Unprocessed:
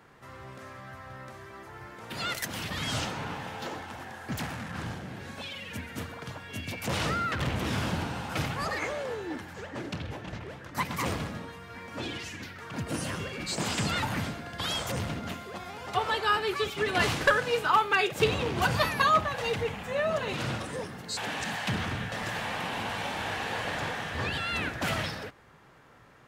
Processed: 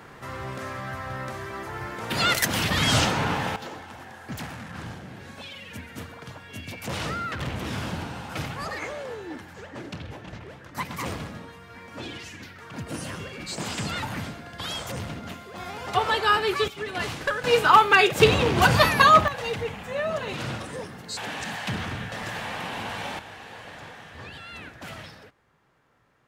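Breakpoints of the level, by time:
+10.5 dB
from 0:03.56 −1 dB
from 0:15.58 +5 dB
from 0:16.68 −4 dB
from 0:17.44 +8 dB
from 0:19.28 +0.5 dB
from 0:23.19 −9.5 dB

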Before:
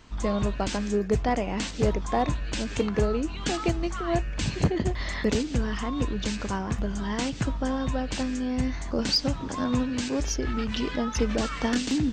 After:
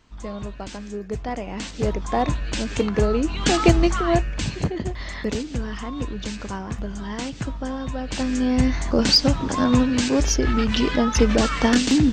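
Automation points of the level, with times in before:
0:00.98 −6 dB
0:02.29 +4 dB
0:02.98 +4 dB
0:03.79 +11.5 dB
0:04.67 −1 dB
0:07.96 −1 dB
0:08.42 +8 dB

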